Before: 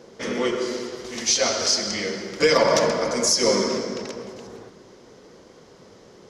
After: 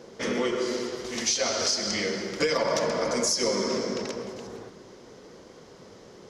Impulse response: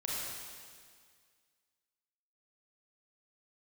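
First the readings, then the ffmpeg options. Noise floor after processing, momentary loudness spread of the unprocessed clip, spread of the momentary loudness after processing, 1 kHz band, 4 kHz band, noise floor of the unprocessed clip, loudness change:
-49 dBFS, 14 LU, 13 LU, -5.5 dB, -5.0 dB, -49 dBFS, -5.0 dB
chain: -af "acompressor=threshold=-23dB:ratio=4"

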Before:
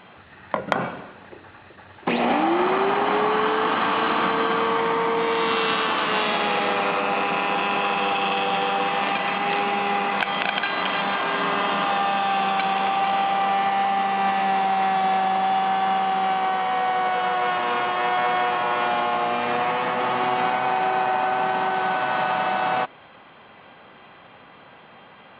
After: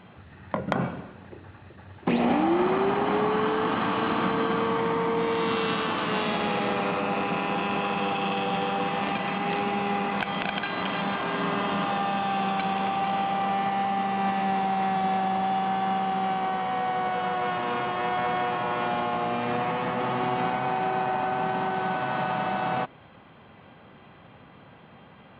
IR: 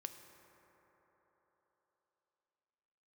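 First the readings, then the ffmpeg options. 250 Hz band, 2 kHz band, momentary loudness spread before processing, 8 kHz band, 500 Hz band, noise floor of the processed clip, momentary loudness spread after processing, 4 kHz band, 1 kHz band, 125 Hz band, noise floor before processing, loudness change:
+1.5 dB, -6.5 dB, 2 LU, n/a, -3.0 dB, -51 dBFS, 3 LU, -7.0 dB, -5.0 dB, +4.0 dB, -48 dBFS, -4.5 dB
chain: -af "equalizer=f=90:w=0.33:g=14,volume=-7dB"

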